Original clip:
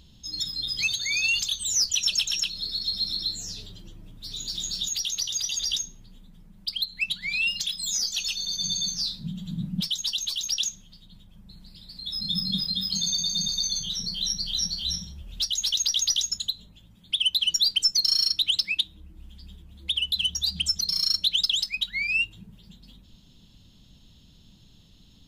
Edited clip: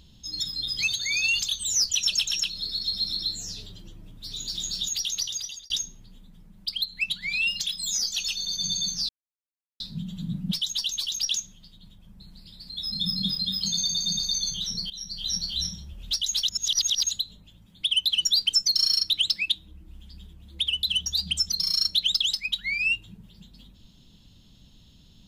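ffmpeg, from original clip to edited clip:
ffmpeg -i in.wav -filter_complex "[0:a]asplit=6[link_01][link_02][link_03][link_04][link_05][link_06];[link_01]atrim=end=5.7,asetpts=PTS-STARTPTS,afade=type=out:start_time=5.21:duration=0.49[link_07];[link_02]atrim=start=5.7:end=9.09,asetpts=PTS-STARTPTS,afade=type=in:duration=0.004:curve=hsin,afade=type=out:start_time=3.386:duration=0.004:curve=hsin,apad=pad_dur=0.71[link_08];[link_03]atrim=start=9.09:end=14.19,asetpts=PTS-STARTPTS,afade=type=in:duration=0.004:curve=hsin,afade=type=out:start_time=5.096:duration=0.004:curve=hsin:silence=0.149624[link_09];[link_04]atrim=start=14.19:end=15.782,asetpts=PTS-STARTPTS,afade=type=in:duration=0.51:silence=0.149624[link_10];[link_05]atrim=start=15.778:end=16.402,asetpts=PTS-STARTPTS,areverse[link_11];[link_06]atrim=start=16.398[link_12];[link_07][link_08][link_09][link_10]concat=n=4:v=0:a=1[link_13];[link_13][link_11]acrossfade=duration=0.004:curve1=hsin:curve2=hsin[link_14];[link_14][link_12]acrossfade=duration=0.004:curve1=hsin:curve2=hsin" out.wav

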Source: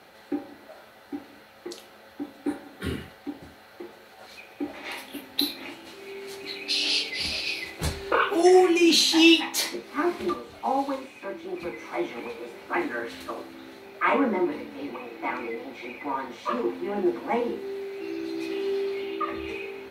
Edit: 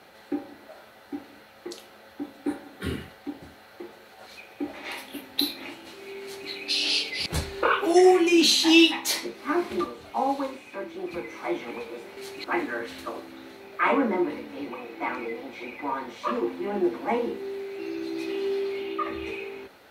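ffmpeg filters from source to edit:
ffmpeg -i in.wav -filter_complex "[0:a]asplit=4[link_01][link_02][link_03][link_04];[link_01]atrim=end=7.262[link_05];[link_02]atrim=start=7.748:end=12.662[link_06];[link_03]atrim=start=6.228:end=6.502[link_07];[link_04]atrim=start=12.658[link_08];[link_05][link_06]acrossfade=duration=0.004:curve1=hsin:curve2=hsin[link_09];[link_09][link_07]acrossfade=duration=0.004:curve1=hsin:curve2=hsin[link_10];[link_10][link_08]acrossfade=duration=0.004:curve1=hsin:curve2=hsin" out.wav

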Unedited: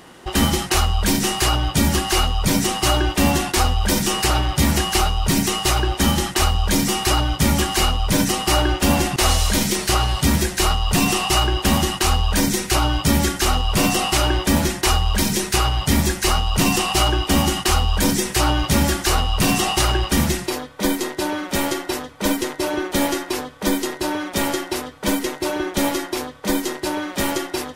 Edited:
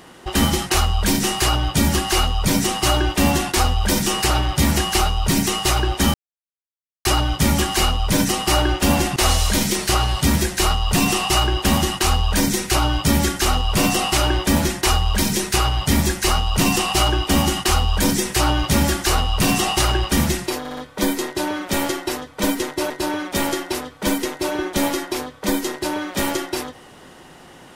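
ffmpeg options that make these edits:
ffmpeg -i in.wav -filter_complex "[0:a]asplit=7[link_01][link_02][link_03][link_04][link_05][link_06][link_07];[link_01]atrim=end=6.14,asetpts=PTS-STARTPTS,afade=type=out:start_time=6.136:duration=0.004:curve=hsin[link_08];[link_02]atrim=start=6.14:end=7.05,asetpts=PTS-STARTPTS,volume=0[link_09];[link_03]atrim=start=7.05:end=20.652,asetpts=PTS-STARTPTS,afade=type=in:duration=0.004:curve=hsin[link_10];[link_04]atrim=start=20.588:end=20.652[link_11];[link_05]atrim=start=20.588:end=20.652[link_12];[link_06]atrim=start=20.588:end=22.722[link_13];[link_07]atrim=start=23.908[link_14];[link_08][link_09][link_10]concat=n=3:v=0:a=1[link_15];[link_15][link_11]acrossfade=duration=0.004:curve1=hsin:curve2=hsin[link_16];[link_16][link_12]acrossfade=duration=0.004:curve1=hsin:curve2=hsin[link_17];[link_17][link_13]acrossfade=duration=0.004:curve1=hsin:curve2=hsin[link_18];[link_18][link_14]acrossfade=duration=0.004:curve1=hsin:curve2=hsin" out.wav

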